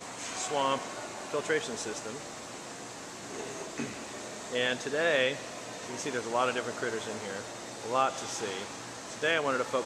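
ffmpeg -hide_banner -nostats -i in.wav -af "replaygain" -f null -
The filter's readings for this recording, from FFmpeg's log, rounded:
track_gain = +10.9 dB
track_peak = 0.146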